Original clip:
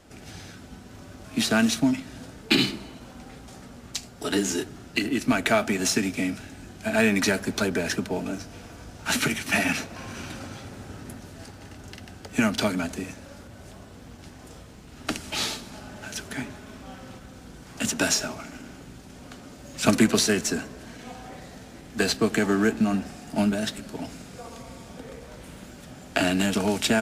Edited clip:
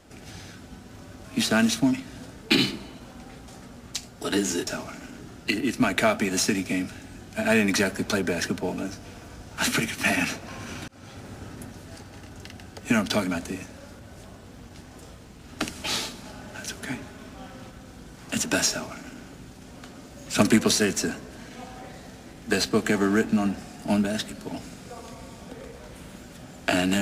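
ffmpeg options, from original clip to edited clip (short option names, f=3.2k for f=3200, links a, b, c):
-filter_complex "[0:a]asplit=4[a][b][c][d];[a]atrim=end=4.672[e];[b]atrim=start=18.178:end=18.702[f];[c]atrim=start=4.668:end=10.36,asetpts=PTS-STARTPTS,afade=t=out:st=5.688:d=0.004:c=hsin[g];[d]atrim=start=10.36,asetpts=PTS-STARTPTS,afade=t=in:d=0.48:c=qsin[h];[e][f]acrossfade=d=0.004:c1=hsin:c2=hsin[i];[g][h]concat=n=2:v=0:a=1[j];[i][j]acrossfade=d=0.004:c1=hsin:c2=hsin"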